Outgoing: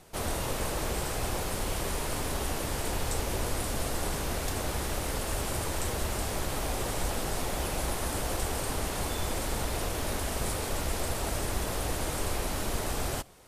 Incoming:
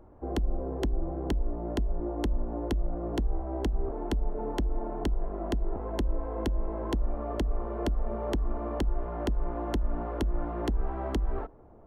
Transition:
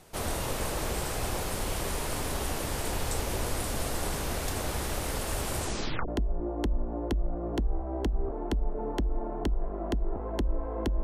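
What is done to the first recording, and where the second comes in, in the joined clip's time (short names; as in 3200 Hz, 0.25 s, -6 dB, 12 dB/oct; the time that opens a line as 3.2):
outgoing
5.57 tape stop 0.51 s
6.08 switch to incoming from 1.68 s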